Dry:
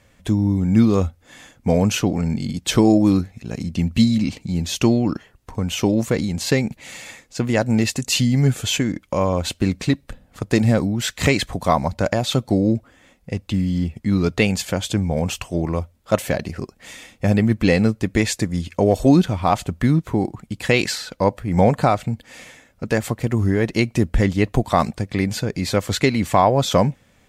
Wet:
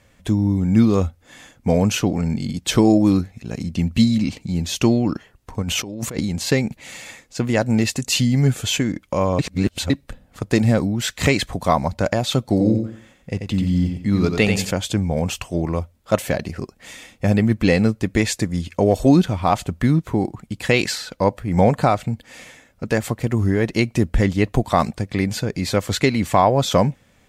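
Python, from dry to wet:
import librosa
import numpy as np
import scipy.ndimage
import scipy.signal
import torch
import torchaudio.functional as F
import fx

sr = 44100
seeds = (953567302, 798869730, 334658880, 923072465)

y = fx.over_compress(x, sr, threshold_db=-27.0, ratio=-1.0, at=(5.62, 6.2))
y = fx.echo_feedback(y, sr, ms=89, feedback_pct=29, wet_db=-6.0, at=(12.42, 14.71))
y = fx.edit(y, sr, fx.reverse_span(start_s=9.39, length_s=0.51), tone=tone)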